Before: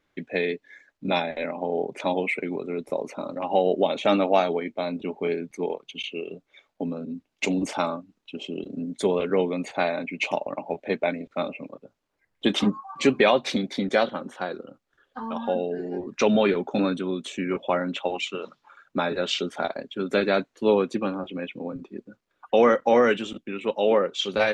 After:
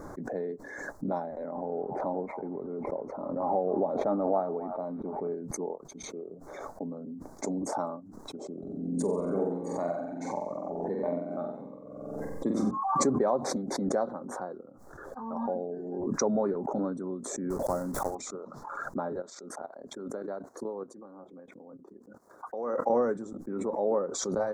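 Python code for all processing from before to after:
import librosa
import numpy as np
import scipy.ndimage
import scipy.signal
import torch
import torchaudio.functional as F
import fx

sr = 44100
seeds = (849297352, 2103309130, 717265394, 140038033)

y = fx.chain(x, sr, fx.law_mismatch(coded='mu'),
    fx.air_absorb(metres=320.0),
    fx.echo_stepped(ms=275, hz=990.0, octaves=1.4, feedback_pct=70, wet_db=-10.0), at=(1.54, 5.34))
y = fx.chain(y, sr, fx.dynamic_eq(hz=2300.0, q=1.5, threshold_db=-41.0, ratio=4.0, max_db=5),
    fx.room_flutter(wall_m=7.9, rt60_s=0.92),
    fx.notch_cascade(direction='rising', hz=1.5), at=(8.53, 12.71))
y = fx.chain(y, sr, fx.block_float(bits=3),
    fx.low_shelf(hz=110.0, db=10.5), at=(17.5, 18.16))
y = fx.chain(y, sr, fx.highpass(hz=310.0, slope=6),
    fx.level_steps(step_db=13),
    fx.tremolo_shape(shape='triangle', hz=5.6, depth_pct=55), at=(19.2, 22.9))
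y = scipy.signal.sosfilt(scipy.signal.cheby1(2, 1.0, [1000.0, 7500.0], 'bandstop', fs=sr, output='sos'), y)
y = fx.high_shelf(y, sr, hz=6500.0, db=-9.5)
y = fx.pre_swell(y, sr, db_per_s=33.0)
y = y * 10.0 ** (-7.0 / 20.0)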